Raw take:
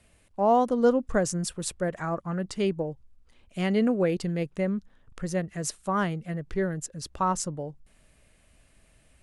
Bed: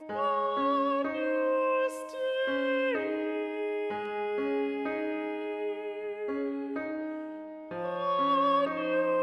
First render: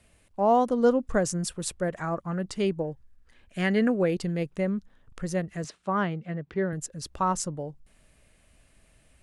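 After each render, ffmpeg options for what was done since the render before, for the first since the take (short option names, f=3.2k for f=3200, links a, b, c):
-filter_complex "[0:a]asettb=1/sr,asplit=3[a][b][c];[a]atrim=end=2.844[d];[b]atrim=start=2.84:end=3.9,asetpts=PTS-STARTPTS,afade=t=in:d=0.004:c=qsin,afade=t=out:st=1.056:d=0.004:c=qsin,equalizer=f=1.7k:w=3.8:g=12.5[e];[c]atrim=start=3.896[f];[d][e]acrossfade=d=0.004:c1=hsin:c2=qsin[g];[g][f]acrossfade=d=0.004:c1=qsin:c2=hsin,asettb=1/sr,asplit=3[h][i][j];[h]atrim=end=5.644[k];[i]atrim=start=5.64:end=6.73,asetpts=PTS-STARTPTS,afade=t=in:d=0.004:c=qsin,afade=t=out:st=1.086:d=0.004:c=qsin,highpass=110,lowpass=3.6k[l];[j]atrim=start=6.726[m];[k][l]acrossfade=d=0.004:c1=hsin:c2=qsin[n];[n][m]acrossfade=d=0.004:c1=qsin:c2=hsin"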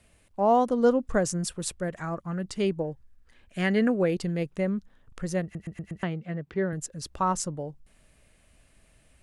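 -filter_complex "[0:a]asettb=1/sr,asplit=3[a][b][c];[a]atrim=end=1.744[d];[b]atrim=start=1.74:end=2.56,asetpts=PTS-STARTPTS,afade=t=in:d=0.004:c=qsin,afade=t=out:st=0.816:d=0.004:c=qsin,equalizer=f=690:w=0.53:g=-4[e];[c]atrim=start=2.556[f];[d][e]acrossfade=d=0.004:c1=hsin:c2=qsin[g];[g][f]acrossfade=d=0.004:c1=qsin:c2=hsin,asplit=6[h][i][j][k][l][m];[h]atrim=end=5.552[n];[i]atrim=start=5.428:end=5.552[o];[j]atrim=start=5.428:end=5.552[p];[k]atrim=start=5.428:end=5.552[q];[l]atrim=start=5.428:end=5.552[r];[m]atrim=start=6.028[s];[n][o]acrossfade=d=0.004:c1=hsin:c2=hsin[t];[t][p]acrossfade=d=0.004:c1=hsin:c2=hsin[u];[u][q]acrossfade=d=0.004:c1=hsin:c2=hsin[v];[v][r]acrossfade=d=0.004:c1=hsin:c2=hsin[w];[w][s]acrossfade=d=0.004:c1=hsin:c2=hsin"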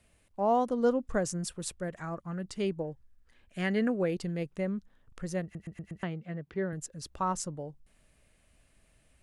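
-af "volume=-5dB"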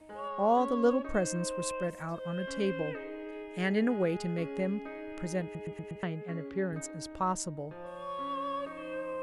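-filter_complex "[1:a]volume=-10dB[a];[0:a][a]amix=inputs=2:normalize=0"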